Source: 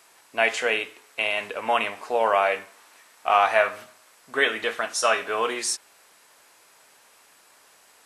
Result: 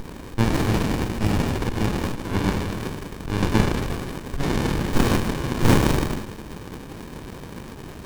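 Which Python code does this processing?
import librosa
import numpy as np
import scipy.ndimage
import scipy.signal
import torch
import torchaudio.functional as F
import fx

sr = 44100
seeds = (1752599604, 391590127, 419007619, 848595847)

p1 = fx.high_shelf(x, sr, hz=4000.0, db=9.5)
p2 = fx.rev_plate(p1, sr, seeds[0], rt60_s=1.4, hf_ratio=0.7, predelay_ms=0, drr_db=-2.0)
p3 = fx.auto_swell(p2, sr, attack_ms=177.0)
p4 = fx.over_compress(p3, sr, threshold_db=-29.0, ratio=-0.5)
p5 = p3 + F.gain(torch.from_numpy(p4), -2.0).numpy()
p6 = scipy.signal.sosfilt(scipy.signal.butter(2, 1500.0, 'highpass', fs=sr, output='sos'), p5)
p7 = fx.high_shelf(p6, sr, hz=9500.0, db=9.5)
p8 = p7 + 10.0 ** (-9.5 / 20.0) * np.pad(p7, (int(161 * sr / 1000.0), 0))[:len(p7)]
p9 = fx.running_max(p8, sr, window=65)
y = F.gain(torch.from_numpy(p9), 4.5).numpy()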